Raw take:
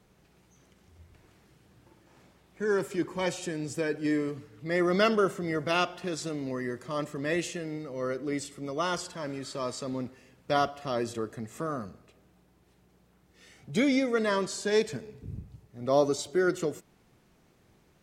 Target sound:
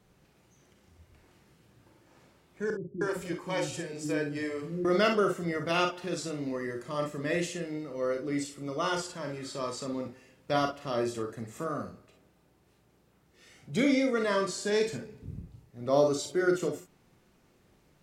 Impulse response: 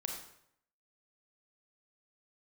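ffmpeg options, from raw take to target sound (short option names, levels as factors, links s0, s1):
-filter_complex "[0:a]asettb=1/sr,asplit=3[s0][s1][s2];[s0]atrim=end=2.704[s3];[s1]atrim=start=2.7:end=4.85,asetpts=PTS-STARTPTS,afade=t=in:d=0.004:c=qsin,afade=t=out:st=2.146:d=0.004:c=qsin,acrossover=split=320[s4][s5];[s5]adelay=310[s6];[s4][s6]amix=inputs=2:normalize=0,atrim=end_sample=94815[s7];[s2]atrim=start=4.846[s8];[s3][s7]acrossfade=d=0.004:c1=hsin:c2=qsin[s9];[s9][s8]acrossfade=d=0.004:c1=qsin:c2=hsin[s10];[1:a]atrim=start_sample=2205,atrim=end_sample=3087[s11];[s10][s11]afir=irnorm=-1:irlink=0"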